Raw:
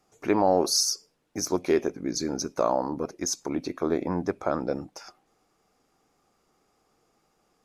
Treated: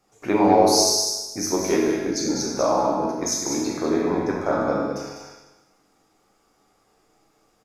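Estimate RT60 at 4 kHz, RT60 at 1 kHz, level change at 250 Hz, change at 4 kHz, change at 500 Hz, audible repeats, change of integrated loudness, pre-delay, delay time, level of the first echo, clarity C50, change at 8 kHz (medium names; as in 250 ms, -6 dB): 1.1 s, 1.1 s, +6.0 dB, +6.0 dB, +5.0 dB, 1, +5.5 dB, 9 ms, 199 ms, -6.0 dB, -1.5 dB, +6.0 dB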